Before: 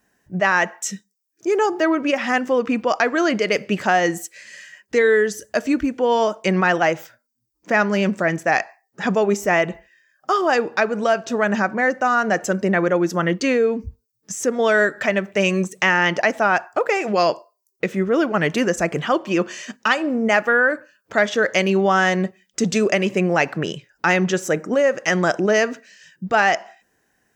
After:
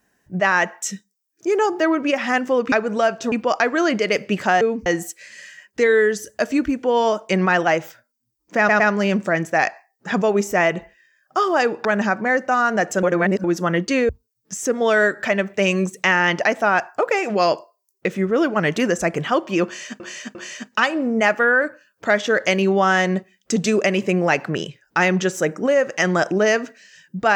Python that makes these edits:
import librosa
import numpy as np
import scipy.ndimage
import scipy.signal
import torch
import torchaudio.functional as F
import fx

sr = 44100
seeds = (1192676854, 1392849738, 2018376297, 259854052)

y = fx.edit(x, sr, fx.stutter(start_s=7.73, slice_s=0.11, count=3),
    fx.move(start_s=10.78, length_s=0.6, to_s=2.72),
    fx.reverse_span(start_s=12.56, length_s=0.41),
    fx.move(start_s=13.62, length_s=0.25, to_s=4.01),
    fx.repeat(start_s=19.43, length_s=0.35, count=3), tone=tone)